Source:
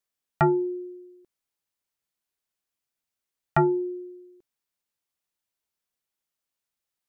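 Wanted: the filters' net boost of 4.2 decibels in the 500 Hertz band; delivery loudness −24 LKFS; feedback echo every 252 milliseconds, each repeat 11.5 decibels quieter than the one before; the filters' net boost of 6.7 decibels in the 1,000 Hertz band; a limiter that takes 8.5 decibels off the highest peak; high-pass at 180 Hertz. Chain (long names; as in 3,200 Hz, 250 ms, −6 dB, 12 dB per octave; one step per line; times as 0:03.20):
high-pass filter 180 Hz
parametric band 500 Hz +7 dB
parametric band 1,000 Hz +6 dB
brickwall limiter −13.5 dBFS
repeating echo 252 ms, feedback 27%, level −11.5 dB
level +0.5 dB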